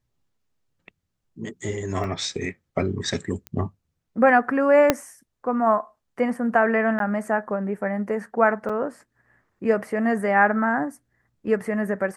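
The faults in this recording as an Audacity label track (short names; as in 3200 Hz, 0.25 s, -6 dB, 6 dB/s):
2.040000	2.040000	gap 2.7 ms
3.470000	3.470000	pop -18 dBFS
4.900000	4.900000	pop -2 dBFS
6.990000	7.000000	gap
8.690000	8.700000	gap 5.3 ms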